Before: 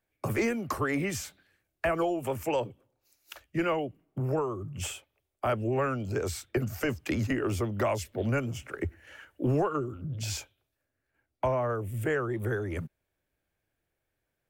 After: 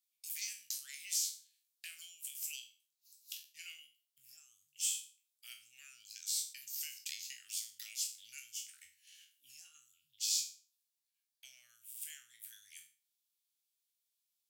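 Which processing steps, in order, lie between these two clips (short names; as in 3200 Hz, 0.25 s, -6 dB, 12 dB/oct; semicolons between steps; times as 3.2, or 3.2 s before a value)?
spectral trails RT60 0.37 s; inverse Chebyshev high-pass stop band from 1100 Hz, stop band 60 dB; gain +3 dB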